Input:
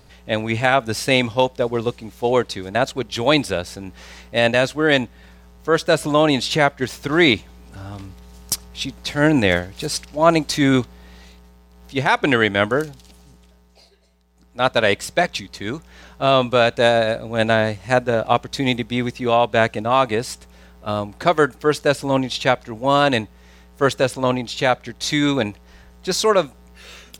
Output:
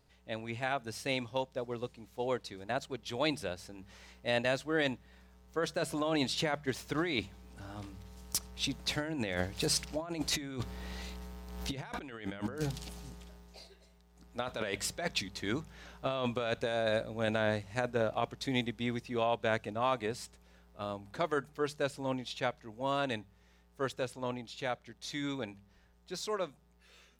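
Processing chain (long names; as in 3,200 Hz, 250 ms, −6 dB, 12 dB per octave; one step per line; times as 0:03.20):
source passing by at 0:12.00, 7 m/s, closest 5.7 metres
compressor whose output falls as the input rises −34 dBFS, ratio −1
hum removal 49.9 Hz, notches 4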